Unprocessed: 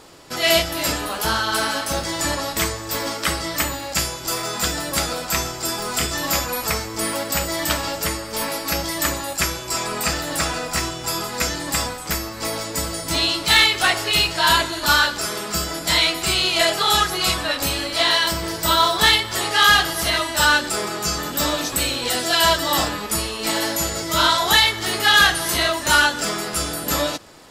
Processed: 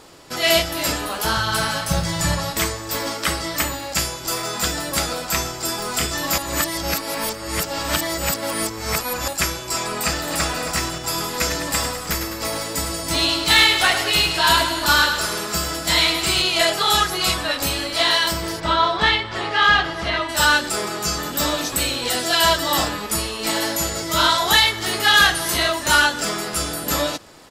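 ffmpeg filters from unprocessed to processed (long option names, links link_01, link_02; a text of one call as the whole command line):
ffmpeg -i in.wav -filter_complex "[0:a]asettb=1/sr,asplit=3[link_01][link_02][link_03];[link_01]atrim=end=1.374[link_04];[link_02]atrim=start=1.37:end=2.51,asetpts=PTS-STARTPTS,afade=type=in:duration=0.004:curve=qsin,afade=type=out:start_time=1.136:duration=0.004:curve=qsin,lowshelf=frequency=210:width_type=q:width=3:gain=7[link_05];[link_03]atrim=start=2.506[link_06];[link_04][link_05]acrossfade=duration=0.004:curve1=hsin:curve2=qsin[link_07];[link_07][link_06]acrossfade=duration=0.004:curve1=qsin:curve2=hsin,asplit=2[link_08][link_09];[link_09]afade=type=in:start_time=9.95:duration=0.01,afade=type=out:start_time=10.44:duration=0.01,aecho=0:1:270|540|810|1080|1350|1620|1890|2160|2430:0.334965|0.217728|0.141523|0.0919899|0.0597934|0.0388657|0.0252627|0.0164208|0.0106735[link_10];[link_08][link_10]amix=inputs=2:normalize=0,asettb=1/sr,asplit=3[link_11][link_12][link_13];[link_11]atrim=end=11.014[link_14];[link_12]atrim=start=11.01:end=16.42,asetpts=PTS-STARTPTS,afade=type=in:duration=0.004:curve=qsin,afade=type=out:start_time=5.406:duration=0.004:curve=qsin,aecho=1:1:103|206|309|412|515|618|721:0.398|0.219|0.12|0.0662|0.0364|0.02|0.011,atrim=end_sample=238581[link_15];[link_13]atrim=start=16.416[link_16];[link_14][link_15]acrossfade=duration=0.004:curve1=hsin:curve2=qsin[link_17];[link_17][link_16]acrossfade=duration=0.004:curve1=qsin:curve2=hsin,asplit=3[link_18][link_19][link_20];[link_18]afade=type=out:start_time=18.59:duration=0.02[link_21];[link_19]lowpass=3000,afade=type=in:start_time=18.59:duration=0.02,afade=type=out:start_time=20.28:duration=0.02[link_22];[link_20]afade=type=in:start_time=20.28:duration=0.02[link_23];[link_21][link_22][link_23]amix=inputs=3:normalize=0,asplit=3[link_24][link_25][link_26];[link_24]atrim=end=6.382[link_27];[link_25]atrim=start=6.378:end=9.282,asetpts=PTS-STARTPTS,areverse[link_28];[link_26]atrim=start=9.278[link_29];[link_27][link_28]acrossfade=duration=0.004:curve1=hsin:curve2=hsin[link_30];[link_30][link_29]acrossfade=duration=0.004:curve1=hsin:curve2=hsin" out.wav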